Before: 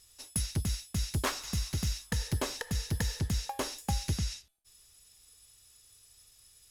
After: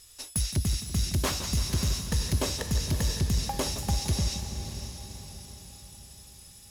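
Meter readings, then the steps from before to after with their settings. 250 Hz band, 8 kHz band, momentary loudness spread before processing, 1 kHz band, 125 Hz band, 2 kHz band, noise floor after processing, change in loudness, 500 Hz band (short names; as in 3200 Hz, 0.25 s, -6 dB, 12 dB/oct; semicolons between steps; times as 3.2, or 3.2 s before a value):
+5.0 dB, +5.5 dB, 3 LU, +2.5 dB, +5.0 dB, +1.0 dB, -51 dBFS, +4.5 dB, +5.0 dB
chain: dynamic EQ 1500 Hz, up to -6 dB, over -51 dBFS, Q 0.93; in parallel at -1 dB: limiter -25.5 dBFS, peak gain reduction 8 dB; on the sum: sine folder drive 6 dB, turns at -12 dBFS; diffused feedback echo 0.556 s, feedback 50%, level -10 dB; warbling echo 0.167 s, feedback 65%, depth 110 cents, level -12 dB; gain -8.5 dB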